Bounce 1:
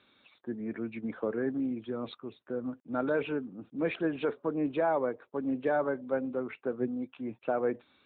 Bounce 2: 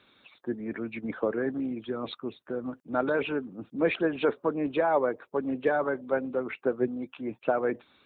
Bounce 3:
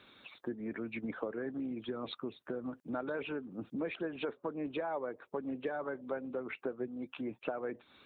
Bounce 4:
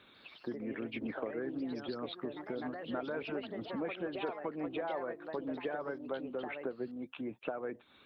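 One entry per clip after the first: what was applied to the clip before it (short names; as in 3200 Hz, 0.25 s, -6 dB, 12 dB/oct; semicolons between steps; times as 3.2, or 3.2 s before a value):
harmonic-percussive split percussive +7 dB
compressor 4:1, threshold -39 dBFS, peak gain reduction 16.5 dB; gain +2 dB
echoes that change speed 0.143 s, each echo +3 st, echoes 2, each echo -6 dB; gain -1 dB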